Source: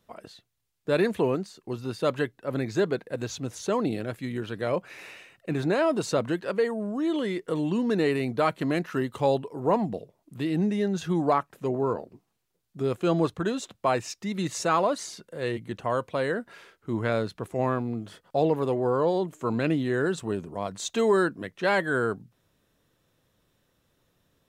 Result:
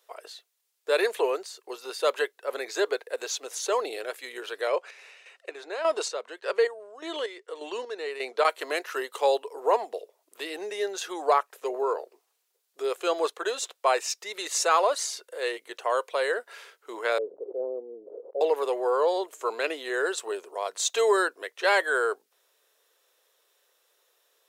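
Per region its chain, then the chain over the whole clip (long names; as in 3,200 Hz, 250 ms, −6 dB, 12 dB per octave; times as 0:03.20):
0:04.67–0:08.45: low-pass filter 7,400 Hz + square-wave tremolo 1.7 Hz, depth 65%, duty 40%
0:17.18–0:18.41: elliptic low-pass filter 520 Hz, stop band 80 dB + level that may fall only so fast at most 40 dB per second
whole clip: elliptic high-pass filter 420 Hz, stop band 70 dB; high-shelf EQ 3,100 Hz +8 dB; level +1.5 dB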